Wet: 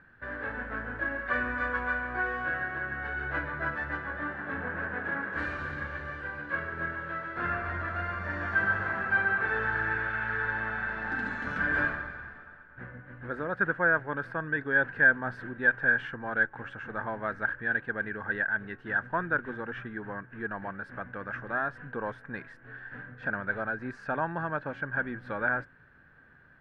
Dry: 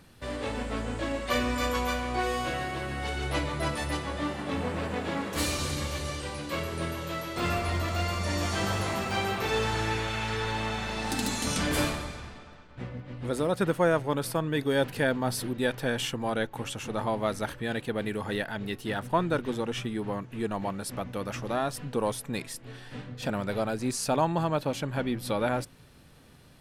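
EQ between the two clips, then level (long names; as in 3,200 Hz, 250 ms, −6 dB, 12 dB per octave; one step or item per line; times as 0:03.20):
low-pass with resonance 1,600 Hz, resonance Q 15
−8.0 dB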